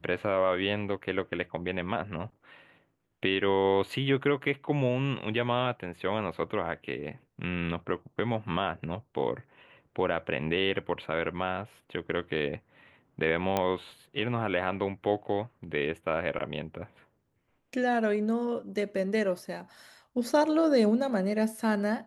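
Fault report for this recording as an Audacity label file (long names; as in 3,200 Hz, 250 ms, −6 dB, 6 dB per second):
13.570000	13.570000	click −13 dBFS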